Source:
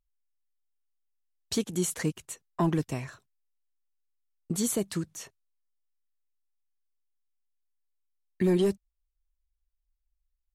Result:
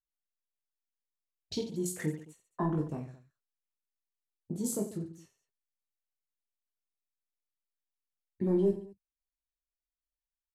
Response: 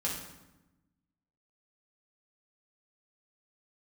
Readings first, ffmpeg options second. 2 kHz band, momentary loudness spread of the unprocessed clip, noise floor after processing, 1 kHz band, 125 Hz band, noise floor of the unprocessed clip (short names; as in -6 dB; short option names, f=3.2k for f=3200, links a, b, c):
-8.0 dB, 16 LU, under -85 dBFS, -4.5 dB, -4.0 dB, -81 dBFS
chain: -af "afwtdn=0.0126,aecho=1:1:20|48|87.2|142.1|218.9:0.631|0.398|0.251|0.158|0.1,volume=-6dB"